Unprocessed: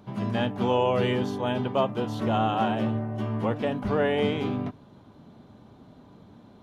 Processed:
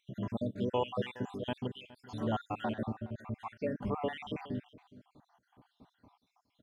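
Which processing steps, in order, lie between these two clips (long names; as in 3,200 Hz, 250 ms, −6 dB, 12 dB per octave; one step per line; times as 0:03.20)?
time-frequency cells dropped at random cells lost 68%
single-tap delay 416 ms −19.5 dB
level −6.5 dB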